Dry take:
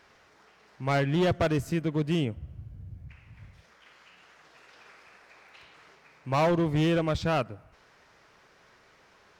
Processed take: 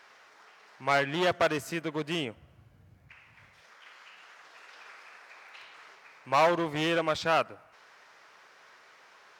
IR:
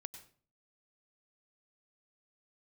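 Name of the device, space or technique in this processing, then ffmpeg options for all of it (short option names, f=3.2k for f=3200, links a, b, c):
filter by subtraction: -filter_complex "[0:a]asplit=2[a][b];[b]lowpass=1.1k,volume=-1[c];[a][c]amix=inputs=2:normalize=0,volume=2.5dB"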